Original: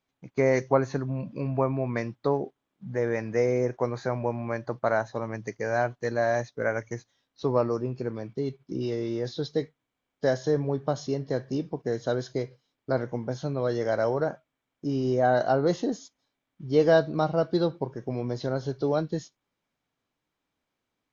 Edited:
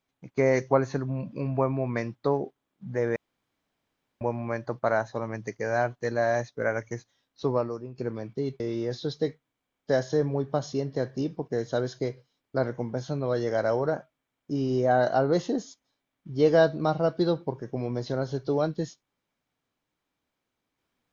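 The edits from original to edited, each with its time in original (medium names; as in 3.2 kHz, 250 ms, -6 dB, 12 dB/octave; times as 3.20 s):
3.16–4.21 s: room tone
7.48–7.98 s: fade out quadratic, to -10 dB
8.60–8.94 s: delete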